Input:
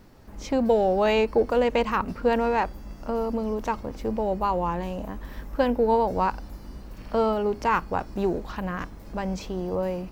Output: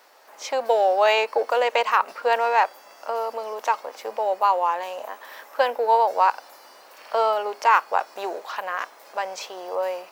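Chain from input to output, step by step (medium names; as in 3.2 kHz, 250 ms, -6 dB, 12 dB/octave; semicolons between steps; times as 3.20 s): high-pass 580 Hz 24 dB/octave; trim +6.5 dB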